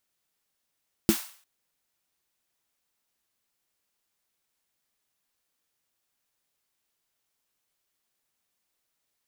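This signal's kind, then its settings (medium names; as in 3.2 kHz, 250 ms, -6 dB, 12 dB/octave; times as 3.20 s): snare drum length 0.35 s, tones 220 Hz, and 330 Hz, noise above 730 Hz, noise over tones -11 dB, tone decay 0.10 s, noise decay 0.48 s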